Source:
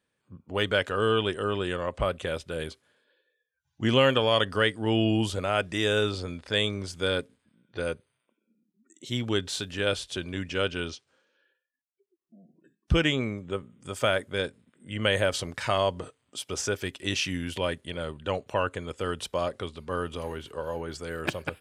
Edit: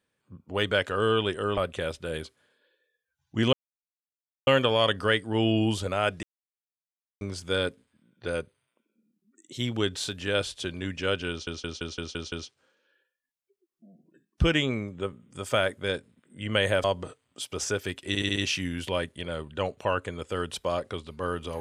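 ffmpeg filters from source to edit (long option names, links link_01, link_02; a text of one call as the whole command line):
ffmpeg -i in.wav -filter_complex "[0:a]asplit=16[link_01][link_02][link_03][link_04][link_05][link_06][link_07][link_08][link_09][link_10][link_11][link_12][link_13][link_14][link_15][link_16];[link_01]atrim=end=1.572[link_17];[link_02]atrim=start=2.028:end=3.99,asetpts=PTS-STARTPTS,afade=type=out:start_time=1.958:duration=0.004:curve=hsin,apad=pad_dur=0.94[link_18];[link_03]atrim=start=3.99:end=5.75,asetpts=PTS-STARTPTS,afade=type=in:duration=0.004:curve=hsin,afade=type=out:start_time=1.756:duration=0.004:curve=hsin[link_19];[link_04]atrim=start=5.75:end=6.73,asetpts=PTS-STARTPTS,volume=0[link_20];[link_05]atrim=start=6.73:end=10.992,asetpts=PTS-STARTPTS,afade=type=in:duration=0.004:curve=hsin[link_21];[link_06]atrim=start=10.818:end=10.992[link_22];[link_07]atrim=start=10.818:end=10.992[link_23];[link_08]atrim=start=10.818:end=10.992[link_24];[link_09]atrim=start=10.818:end=10.992[link_25];[link_10]atrim=start=10.818:end=10.992[link_26];[link_11]atrim=start=10.818:end=15.342[link_27];[link_12]atrim=start=15.808:end=17.122[link_28];[link_13]atrim=start=17.048:end=17.122[link_29];[link_14]atrim=start=17.048:end=17.122[link_30];[link_15]atrim=start=17.048:end=17.122[link_31];[link_16]atrim=start=17.048[link_32];[link_18][link_19][link_20][link_21]concat=n=4:v=0:a=1[link_33];[link_17][link_33]acrossfade=duration=0.004:curve1=hsin:curve2=hsin[link_34];[link_34][link_22]acrossfade=duration=0.004:curve1=hsin:curve2=hsin[link_35];[link_35][link_23]acrossfade=duration=0.004:curve1=hsin:curve2=hsin[link_36];[link_36][link_24]acrossfade=duration=0.004:curve1=hsin:curve2=hsin[link_37];[link_37][link_25]acrossfade=duration=0.004:curve1=hsin:curve2=hsin[link_38];[link_38][link_26]acrossfade=duration=0.004:curve1=hsin:curve2=hsin[link_39];[link_39][link_27]acrossfade=duration=0.004:curve1=hsin:curve2=hsin[link_40];[link_40][link_28]acrossfade=duration=0.004:curve1=hsin:curve2=hsin[link_41];[link_41][link_29]acrossfade=duration=0.004:curve1=hsin:curve2=hsin[link_42];[link_42][link_30]acrossfade=duration=0.004:curve1=hsin:curve2=hsin[link_43];[link_43][link_31]acrossfade=duration=0.004:curve1=hsin:curve2=hsin[link_44];[link_44][link_32]acrossfade=duration=0.004:curve1=hsin:curve2=hsin" out.wav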